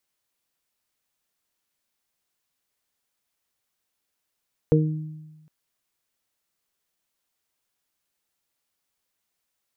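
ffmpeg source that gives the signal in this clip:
ffmpeg -f lavfi -i "aevalsrc='0.168*pow(10,-3*t/1.22)*sin(2*PI*155*t)+0.112*pow(10,-3*t/0.73)*sin(2*PI*310*t)+0.188*pow(10,-3*t/0.29)*sin(2*PI*465*t)':duration=0.76:sample_rate=44100" out.wav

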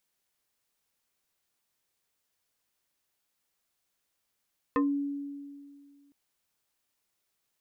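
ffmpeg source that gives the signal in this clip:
ffmpeg -f lavfi -i "aevalsrc='0.0841*pow(10,-3*t/2.11)*sin(2*PI*283*t+1.8*pow(10,-3*t/0.2)*sin(2*PI*2.69*283*t))':duration=1.36:sample_rate=44100" out.wav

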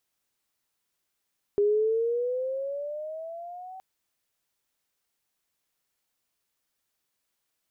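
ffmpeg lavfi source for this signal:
ffmpeg -f lavfi -i "aevalsrc='pow(10,(-19-20.5*t/2.22)/20)*sin(2*PI*405*2.22/(11*log(2)/12)*(exp(11*log(2)/12*t/2.22)-1))':duration=2.22:sample_rate=44100" out.wav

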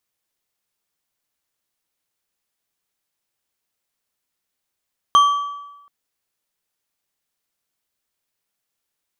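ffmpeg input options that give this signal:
ffmpeg -f lavfi -i "aevalsrc='0.447*pow(10,-3*t/1.04)*sin(2*PI*1150*t)+0.126*pow(10,-3*t/0.767)*sin(2*PI*3170.6*t)+0.0355*pow(10,-3*t/0.627)*sin(2*PI*6214.6*t)+0.01*pow(10,-3*t/0.539)*sin(2*PI*10272.9*t)+0.00282*pow(10,-3*t/0.478)*sin(2*PI*15341*t)':duration=0.73:sample_rate=44100" out.wav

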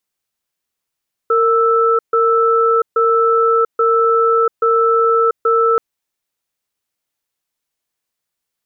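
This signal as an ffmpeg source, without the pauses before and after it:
ffmpeg -f lavfi -i "aevalsrc='0.224*(sin(2*PI*459*t)+sin(2*PI*1320*t))*clip(min(mod(t,0.83),0.69-mod(t,0.83))/0.005,0,1)':duration=4.48:sample_rate=44100" out.wav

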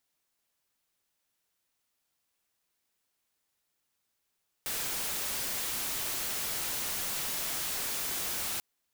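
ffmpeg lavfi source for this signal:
ffmpeg -f lavfi -i "anoisesrc=color=white:amplitude=0.0346:duration=3.94:sample_rate=44100:seed=1" out.wav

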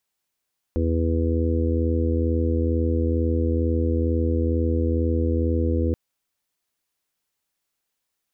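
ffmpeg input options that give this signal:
ffmpeg -f lavfi -i "aevalsrc='0.0891*sin(2*PI*82.2*t)+0.01*sin(2*PI*164.4*t)+0.0447*sin(2*PI*246.6*t)+0.0447*sin(2*PI*328.8*t)+0.0251*sin(2*PI*411*t)+0.0376*sin(2*PI*493.2*t)':duration=5.18:sample_rate=44100" out.wav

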